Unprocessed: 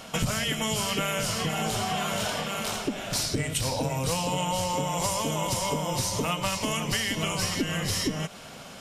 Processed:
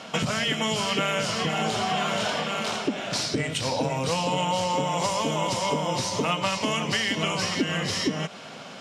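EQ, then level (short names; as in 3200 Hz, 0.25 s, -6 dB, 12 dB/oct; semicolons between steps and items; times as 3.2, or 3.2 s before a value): BPF 160–5400 Hz; +3.5 dB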